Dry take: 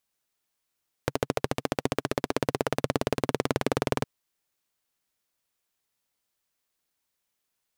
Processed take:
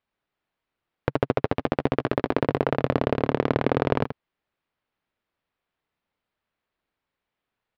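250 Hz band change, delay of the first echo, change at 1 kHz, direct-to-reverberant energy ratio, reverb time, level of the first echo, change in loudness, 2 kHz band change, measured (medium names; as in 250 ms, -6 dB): +5.5 dB, 81 ms, +4.0 dB, no reverb, no reverb, -9.5 dB, +4.5 dB, +2.5 dB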